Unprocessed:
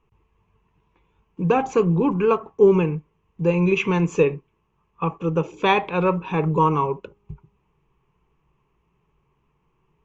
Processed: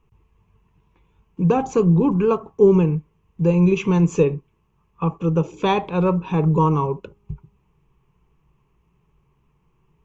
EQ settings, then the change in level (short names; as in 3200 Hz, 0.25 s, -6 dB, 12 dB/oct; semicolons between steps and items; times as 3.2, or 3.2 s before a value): dynamic EQ 2100 Hz, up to -8 dB, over -39 dBFS, Q 1.1; tone controls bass +6 dB, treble +4 dB; 0.0 dB